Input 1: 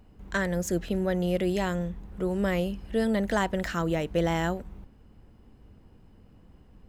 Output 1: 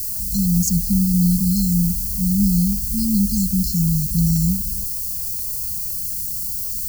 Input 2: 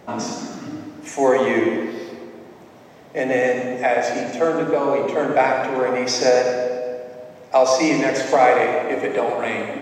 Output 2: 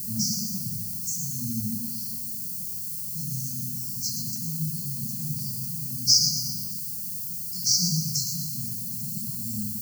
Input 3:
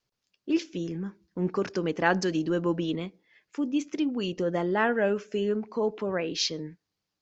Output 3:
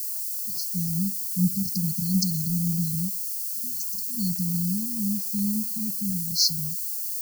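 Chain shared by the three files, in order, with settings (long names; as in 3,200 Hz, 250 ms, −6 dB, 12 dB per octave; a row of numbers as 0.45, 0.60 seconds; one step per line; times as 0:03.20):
background noise violet −39 dBFS
linear-phase brick-wall band-stop 220–4,100 Hz
normalise the peak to −6 dBFS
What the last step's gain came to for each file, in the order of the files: +13.5, +5.5, +8.5 decibels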